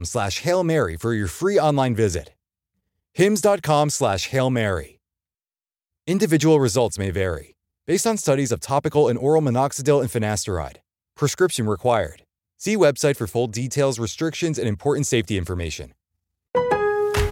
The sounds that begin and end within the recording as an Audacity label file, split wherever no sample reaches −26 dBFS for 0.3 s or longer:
3.190000	4.810000	sound
6.080000	7.380000	sound
7.890000	10.680000	sound
11.220000	12.070000	sound
12.640000	15.830000	sound